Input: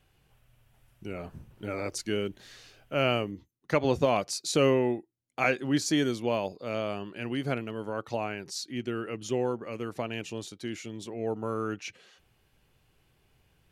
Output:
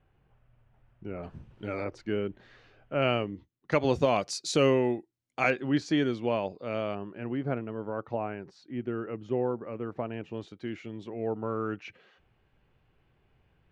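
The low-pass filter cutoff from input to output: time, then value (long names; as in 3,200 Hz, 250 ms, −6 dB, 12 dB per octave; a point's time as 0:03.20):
1,600 Hz
from 0:01.23 4,300 Hz
from 0:01.84 1,900 Hz
from 0:03.02 3,200 Hz
from 0:03.72 7,600 Hz
from 0:05.50 3,000 Hz
from 0:06.95 1,400 Hz
from 0:10.34 2,300 Hz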